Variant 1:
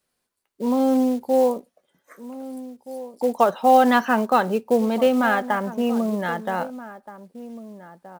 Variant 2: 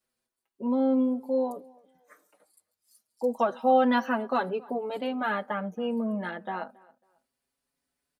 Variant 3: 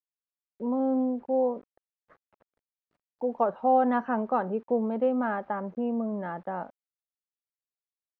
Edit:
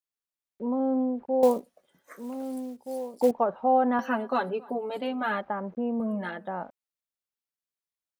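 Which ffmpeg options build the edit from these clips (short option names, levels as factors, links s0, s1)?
-filter_complex "[1:a]asplit=2[s0][s1];[2:a]asplit=4[s2][s3][s4][s5];[s2]atrim=end=1.432[s6];[0:a]atrim=start=1.428:end=3.312[s7];[s3]atrim=start=3.308:end=3.992[s8];[s0]atrim=start=3.988:end=5.412[s9];[s4]atrim=start=5.408:end=6.002[s10];[s1]atrim=start=5.998:end=6.482[s11];[s5]atrim=start=6.478[s12];[s6][s7]acrossfade=d=0.004:c1=hsin:c2=hsin[s13];[s13][s8]acrossfade=d=0.004:c1=hsin:c2=hsin[s14];[s14][s9]acrossfade=d=0.004:c1=hsin:c2=hsin[s15];[s15][s10]acrossfade=d=0.004:c1=hsin:c2=hsin[s16];[s16][s11]acrossfade=d=0.004:c1=hsin:c2=hsin[s17];[s17][s12]acrossfade=d=0.004:c1=hsin:c2=hsin"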